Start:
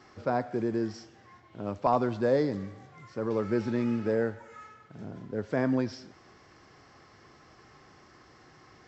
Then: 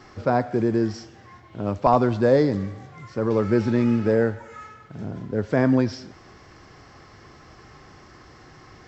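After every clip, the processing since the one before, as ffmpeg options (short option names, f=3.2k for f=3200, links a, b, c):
-af "lowshelf=f=82:g=11,volume=7dB"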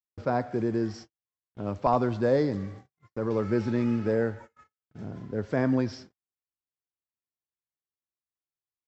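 -af "agate=range=-55dB:threshold=-37dB:ratio=16:detection=peak,volume=-6dB"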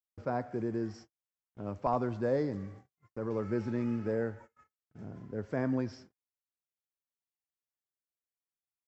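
-af "equalizer=f=3.8k:t=o:w=0.79:g=-6.5,volume=-6.5dB"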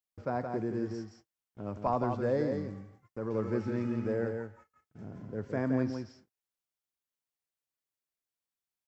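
-af "aecho=1:1:170:0.531"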